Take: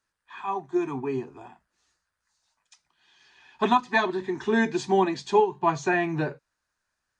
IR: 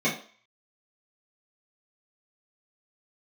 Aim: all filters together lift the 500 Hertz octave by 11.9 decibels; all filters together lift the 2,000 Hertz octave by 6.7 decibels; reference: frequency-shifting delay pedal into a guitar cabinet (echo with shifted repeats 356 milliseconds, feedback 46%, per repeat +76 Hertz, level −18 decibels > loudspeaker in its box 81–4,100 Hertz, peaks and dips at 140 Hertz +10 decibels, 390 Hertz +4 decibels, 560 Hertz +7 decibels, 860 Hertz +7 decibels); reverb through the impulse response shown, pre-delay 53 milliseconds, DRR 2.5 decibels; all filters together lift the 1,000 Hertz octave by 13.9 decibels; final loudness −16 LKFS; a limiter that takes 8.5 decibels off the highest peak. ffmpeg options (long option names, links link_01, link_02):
-filter_complex "[0:a]equalizer=frequency=500:width_type=o:gain=9,equalizer=frequency=1000:width_type=o:gain=6.5,equalizer=frequency=2000:width_type=o:gain=5,alimiter=limit=-8.5dB:level=0:latency=1,asplit=2[link_01][link_02];[1:a]atrim=start_sample=2205,adelay=53[link_03];[link_02][link_03]afir=irnorm=-1:irlink=0,volume=-16dB[link_04];[link_01][link_04]amix=inputs=2:normalize=0,asplit=5[link_05][link_06][link_07][link_08][link_09];[link_06]adelay=356,afreqshift=76,volume=-18dB[link_10];[link_07]adelay=712,afreqshift=152,volume=-24.7dB[link_11];[link_08]adelay=1068,afreqshift=228,volume=-31.5dB[link_12];[link_09]adelay=1424,afreqshift=304,volume=-38.2dB[link_13];[link_05][link_10][link_11][link_12][link_13]amix=inputs=5:normalize=0,highpass=81,equalizer=frequency=140:width_type=q:width=4:gain=10,equalizer=frequency=390:width_type=q:width=4:gain=4,equalizer=frequency=560:width_type=q:width=4:gain=7,equalizer=frequency=860:width_type=q:width=4:gain=7,lowpass=frequency=4100:width=0.5412,lowpass=frequency=4100:width=1.3066,volume=-0.5dB"